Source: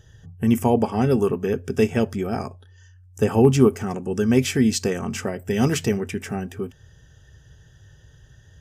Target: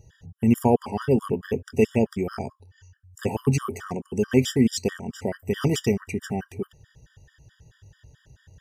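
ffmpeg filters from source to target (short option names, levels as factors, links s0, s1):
-filter_complex "[0:a]asettb=1/sr,asplit=3[s0][s1][s2];[s0]atrim=end=4.274[s3];[s1]atrim=start=4.27:end=5.22,asetpts=PTS-STARTPTS,afade=t=in:d=0.004:c=qsin,afade=t=out:st=0.946:d=0.004:c=qsin,agate=range=0.0224:threshold=0.0794:ratio=3:detection=peak[s4];[s2]atrim=start=5.216[s5];[s3][s4]acrossfade=d=0.004:c1=hsin:c2=qsin[s6];[s6][s5]acrossfade=d=0.004:c1=qsin:c2=hsin,afftfilt=real='re*gt(sin(2*PI*4.6*pts/sr)*(1-2*mod(floor(b*sr/1024/960),2)),0)':imag='im*gt(sin(2*PI*4.6*pts/sr)*(1-2*mod(floor(b*sr/1024/960),2)),0)':win_size=1024:overlap=0.75"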